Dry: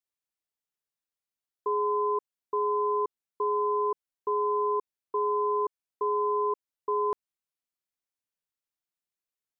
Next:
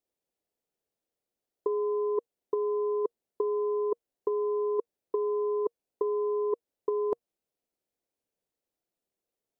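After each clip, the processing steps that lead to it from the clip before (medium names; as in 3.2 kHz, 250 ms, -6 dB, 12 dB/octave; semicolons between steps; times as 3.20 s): FFT filter 140 Hz 0 dB, 470 Hz +9 dB, 710 Hz +4 dB, 1.1 kHz -7 dB; compressor with a negative ratio -26 dBFS, ratio -0.5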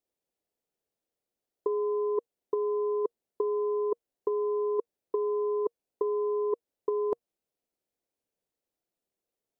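no audible change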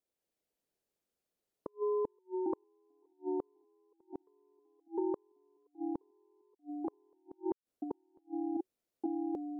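ever faster or slower copies 184 ms, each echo -2 st, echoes 3; inverted gate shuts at -22 dBFS, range -40 dB; trim -3 dB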